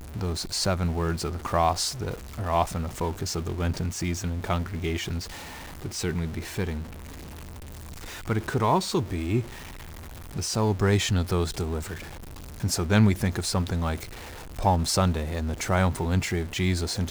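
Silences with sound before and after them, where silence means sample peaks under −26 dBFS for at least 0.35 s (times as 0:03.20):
0:05.19–0:05.85
0:06.78–0:08.28
0:09.41–0:10.36
0:11.93–0:12.64
0:14.03–0:14.59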